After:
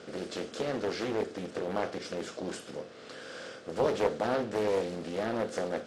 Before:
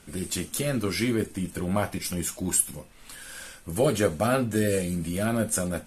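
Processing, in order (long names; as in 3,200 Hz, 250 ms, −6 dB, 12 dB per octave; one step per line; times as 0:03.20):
compressor on every frequency bin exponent 0.6
loudspeaker in its box 160–5,400 Hz, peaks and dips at 160 Hz −6 dB, 230 Hz −3 dB, 460 Hz +7 dB, 930 Hz −6 dB, 2,300 Hz −6 dB
highs frequency-modulated by the lows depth 0.43 ms
level −8.5 dB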